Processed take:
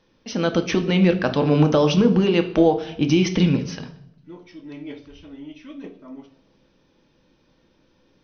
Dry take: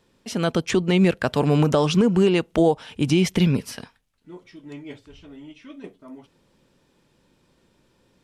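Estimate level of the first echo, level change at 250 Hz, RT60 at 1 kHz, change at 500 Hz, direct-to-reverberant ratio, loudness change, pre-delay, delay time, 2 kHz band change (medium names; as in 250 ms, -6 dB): no echo, +2.0 dB, 0.70 s, +1.5 dB, 6.0 dB, +1.0 dB, 3 ms, no echo, +1.0 dB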